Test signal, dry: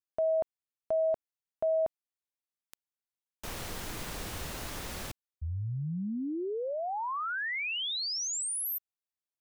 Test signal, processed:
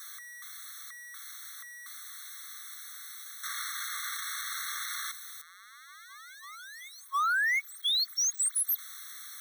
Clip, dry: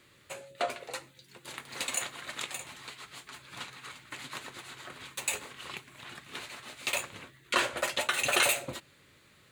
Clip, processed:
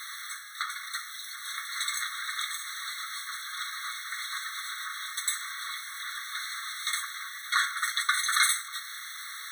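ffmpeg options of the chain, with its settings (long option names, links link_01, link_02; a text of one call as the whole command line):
ffmpeg -i in.wav -af "aeval=exprs='val(0)+0.5*0.0168*sgn(val(0))':channel_layout=same,afftfilt=real='re*eq(mod(floor(b*sr/1024/1100),2),1)':imag='im*eq(mod(floor(b*sr/1024/1100),2),1)':win_size=1024:overlap=0.75,volume=4dB" out.wav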